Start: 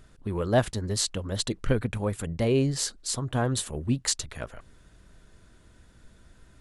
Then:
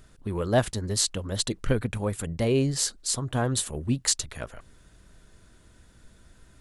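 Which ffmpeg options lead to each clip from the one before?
ffmpeg -i in.wav -af "highshelf=frequency=5500:gain=5" out.wav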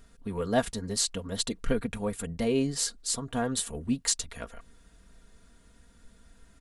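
ffmpeg -i in.wav -af "aecho=1:1:4.3:0.61,volume=-4dB" out.wav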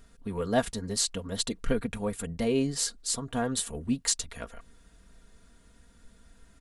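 ffmpeg -i in.wav -af anull out.wav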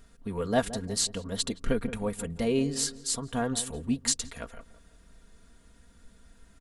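ffmpeg -i in.wav -filter_complex "[0:a]asplit=2[link_01][link_02];[link_02]adelay=170,lowpass=frequency=1100:poles=1,volume=-13dB,asplit=2[link_03][link_04];[link_04]adelay=170,lowpass=frequency=1100:poles=1,volume=0.4,asplit=2[link_05][link_06];[link_06]adelay=170,lowpass=frequency=1100:poles=1,volume=0.4,asplit=2[link_07][link_08];[link_08]adelay=170,lowpass=frequency=1100:poles=1,volume=0.4[link_09];[link_01][link_03][link_05][link_07][link_09]amix=inputs=5:normalize=0" out.wav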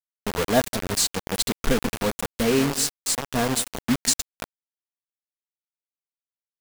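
ffmpeg -i in.wav -af "acrusher=bits=4:mix=0:aa=0.000001,volume=5dB" out.wav

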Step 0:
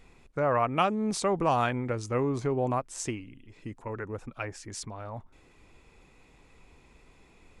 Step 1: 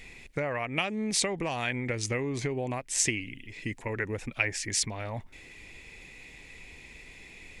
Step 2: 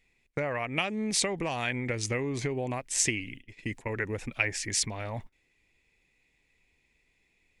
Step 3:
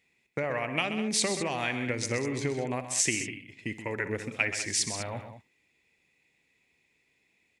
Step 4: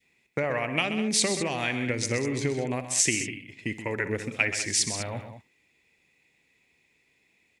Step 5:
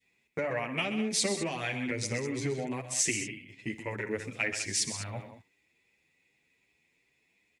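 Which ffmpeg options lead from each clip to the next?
ffmpeg -i in.wav -af "acompressor=threshold=-32dB:ratio=10,highshelf=frequency=1600:width_type=q:width=3:gain=7,volume=4.5dB" out.wav
ffmpeg -i in.wav -af "agate=range=-22dB:threshold=-42dB:ratio=16:detection=peak" out.wav
ffmpeg -i in.wav -filter_complex "[0:a]highpass=120,asplit=2[link_01][link_02];[link_02]aecho=0:1:60|128|199:0.178|0.316|0.237[link_03];[link_01][link_03]amix=inputs=2:normalize=0" out.wav
ffmpeg -i in.wav -af "adynamicequalizer=threshold=0.00501:dfrequency=1000:dqfactor=0.89:tfrequency=1000:tqfactor=0.89:attack=5:release=100:ratio=0.375:range=2:mode=cutabove:tftype=bell,volume=3.5dB" out.wav
ffmpeg -i in.wav -filter_complex "[0:a]asplit=2[link_01][link_02];[link_02]asoftclip=type=tanh:threshold=-14dB,volume=-9dB[link_03];[link_01][link_03]amix=inputs=2:normalize=0,asplit=2[link_04][link_05];[link_05]adelay=8.7,afreqshift=2.6[link_06];[link_04][link_06]amix=inputs=2:normalize=1,volume=-4.5dB" out.wav

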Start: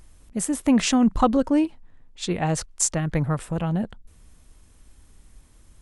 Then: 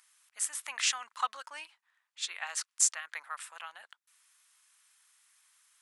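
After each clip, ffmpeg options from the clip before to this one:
ffmpeg -i in.wav -af "highpass=frequency=1200:width=0.5412,highpass=frequency=1200:width=1.3066,volume=-3dB" out.wav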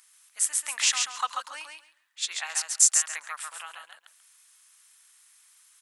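ffmpeg -i in.wav -filter_complex "[0:a]highshelf=frequency=3900:gain=7,asplit=2[link_01][link_02];[link_02]aecho=0:1:137|274|411:0.596|0.101|0.0172[link_03];[link_01][link_03]amix=inputs=2:normalize=0,volume=1.5dB" out.wav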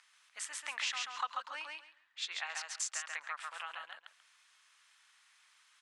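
ffmpeg -i in.wav -af "lowpass=3600,acompressor=threshold=-42dB:ratio=2,volume=1.5dB" out.wav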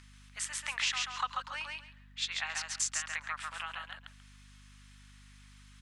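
ffmpeg -i in.wav -af "tiltshelf=frequency=830:gain=-3.5,aeval=exprs='val(0)+0.00141*(sin(2*PI*50*n/s)+sin(2*PI*2*50*n/s)/2+sin(2*PI*3*50*n/s)/3+sin(2*PI*4*50*n/s)/4+sin(2*PI*5*50*n/s)/5)':channel_layout=same,volume=1.5dB" out.wav

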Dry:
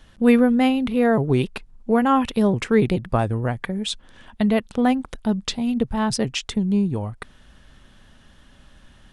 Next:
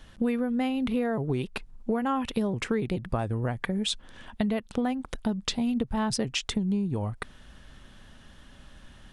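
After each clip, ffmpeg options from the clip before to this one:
ffmpeg -i in.wav -af "acompressor=threshold=-24dB:ratio=10" out.wav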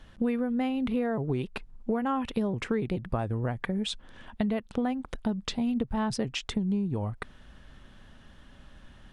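ffmpeg -i in.wav -af "highshelf=frequency=4200:gain=-8,volume=-1dB" out.wav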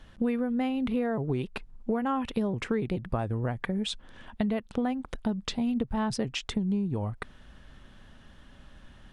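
ffmpeg -i in.wav -af anull out.wav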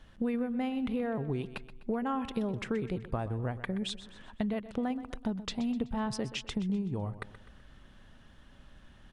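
ffmpeg -i in.wav -af "aecho=1:1:126|252|378|504:0.188|0.0885|0.0416|0.0196,volume=-4dB" out.wav

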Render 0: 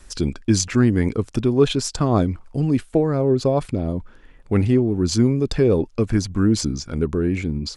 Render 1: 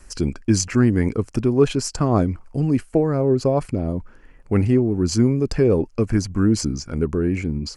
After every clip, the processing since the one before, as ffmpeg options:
ffmpeg -i in.wav -af "equalizer=frequency=3600:width=5.2:gain=-15" out.wav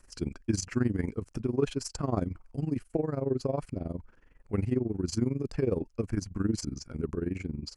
ffmpeg -i in.wav -af "tremolo=f=22:d=0.857,volume=-8dB" out.wav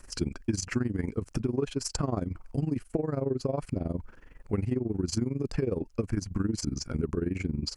ffmpeg -i in.wav -af "acompressor=threshold=-34dB:ratio=6,volume=8.5dB" out.wav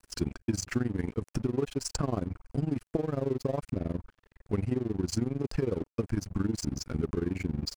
ffmpeg -i in.wav -af "aeval=exprs='sgn(val(0))*max(abs(val(0))-0.00501,0)':channel_layout=same" out.wav

